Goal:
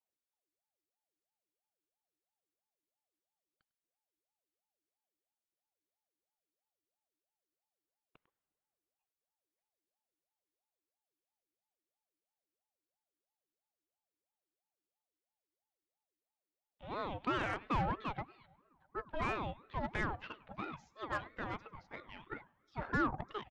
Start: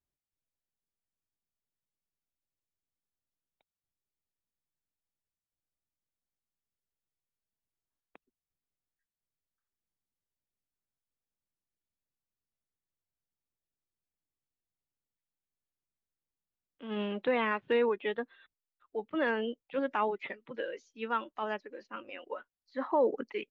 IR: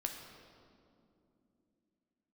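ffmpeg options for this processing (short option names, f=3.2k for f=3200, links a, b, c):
-filter_complex "[0:a]aecho=1:1:100:0.1,acrossover=split=2500[a][b];[b]acompressor=threshold=-50dB:ratio=4:attack=1:release=60[c];[a][c]amix=inputs=2:normalize=0,asplit=2[d][e];[1:a]atrim=start_sample=2205,lowshelf=f=360:g=-10[f];[e][f]afir=irnorm=-1:irlink=0,volume=-17.5dB[g];[d][g]amix=inputs=2:normalize=0,aeval=exprs='0.141*(cos(1*acos(clip(val(0)/0.141,-1,1)))-cos(1*PI/2))+0.00708*(cos(8*acos(clip(val(0)/0.141,-1,1)))-cos(8*PI/2))':c=same,aeval=exprs='val(0)*sin(2*PI*590*n/s+590*0.5/3*sin(2*PI*3*n/s))':c=same,volume=-4dB"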